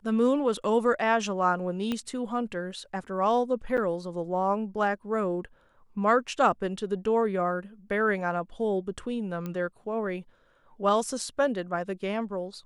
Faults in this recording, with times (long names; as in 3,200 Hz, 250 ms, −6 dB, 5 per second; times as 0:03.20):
0:01.92: click −17 dBFS
0:03.77–0:03.78: drop-out 7.2 ms
0:09.46: click −22 dBFS